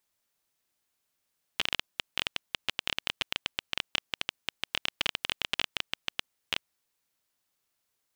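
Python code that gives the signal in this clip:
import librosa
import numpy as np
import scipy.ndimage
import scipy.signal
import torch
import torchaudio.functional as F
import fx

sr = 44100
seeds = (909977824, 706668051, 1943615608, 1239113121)

y = fx.geiger_clicks(sr, seeds[0], length_s=5.03, per_s=14.0, level_db=-9.5)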